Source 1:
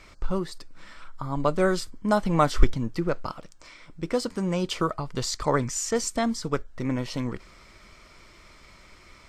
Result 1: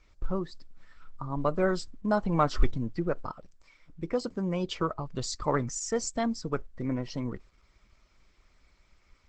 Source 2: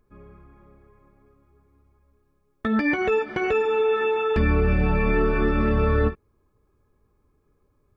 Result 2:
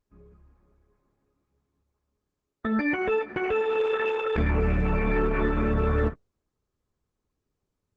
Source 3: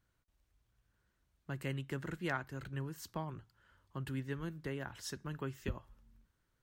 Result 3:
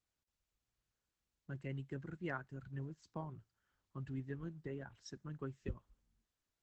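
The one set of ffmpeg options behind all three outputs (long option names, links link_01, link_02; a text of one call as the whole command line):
ffmpeg -i in.wav -af "afftdn=noise_reduction=12:noise_floor=-38,acontrast=21,volume=-8dB" -ar 48000 -c:a libopus -b:a 12k out.opus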